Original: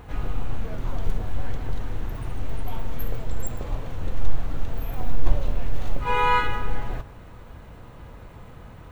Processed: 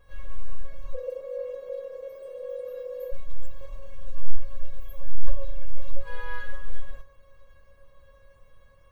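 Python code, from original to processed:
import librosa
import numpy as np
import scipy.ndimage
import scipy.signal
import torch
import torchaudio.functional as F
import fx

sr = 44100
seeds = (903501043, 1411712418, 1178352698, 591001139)

y = fx.ring_mod(x, sr, carrier_hz=500.0, at=(0.94, 3.12))
y = fx.comb_fb(y, sr, f0_hz=550.0, decay_s=0.18, harmonics='all', damping=0.0, mix_pct=100)
y = F.gain(torch.from_numpy(y), 3.5).numpy()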